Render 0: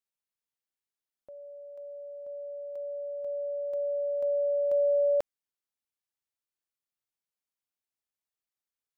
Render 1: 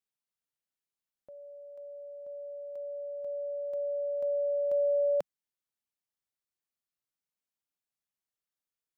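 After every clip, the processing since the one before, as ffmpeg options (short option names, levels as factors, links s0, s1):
-af "equalizer=f=170:t=o:w=0.8:g=5,volume=0.75"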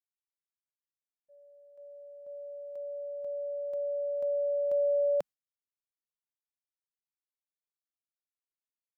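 -af "agate=range=0.0224:threshold=0.00891:ratio=3:detection=peak"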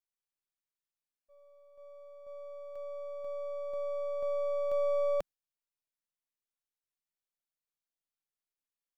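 -af "aeval=exprs='if(lt(val(0),0),0.447*val(0),val(0))':c=same"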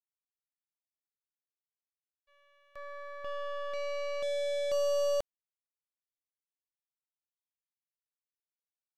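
-af "aresample=32000,aresample=44100,acrusher=bits=5:mix=0:aa=0.5"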